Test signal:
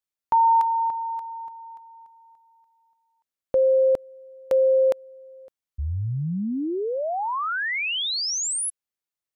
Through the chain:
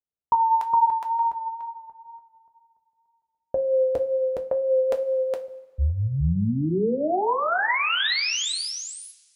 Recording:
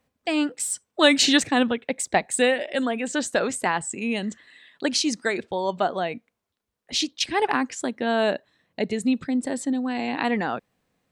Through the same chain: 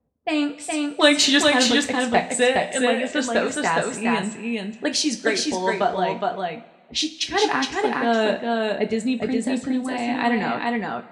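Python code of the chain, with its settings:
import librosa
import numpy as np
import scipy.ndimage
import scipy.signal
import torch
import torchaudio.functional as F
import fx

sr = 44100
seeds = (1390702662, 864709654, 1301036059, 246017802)

p1 = fx.env_lowpass(x, sr, base_hz=610.0, full_db=-20.5)
p2 = fx.wow_flutter(p1, sr, seeds[0], rate_hz=2.1, depth_cents=25.0)
p3 = p2 + fx.echo_single(p2, sr, ms=415, db=-3.0, dry=0)
y = fx.rev_double_slope(p3, sr, seeds[1], early_s=0.23, late_s=1.5, knee_db=-18, drr_db=3.5)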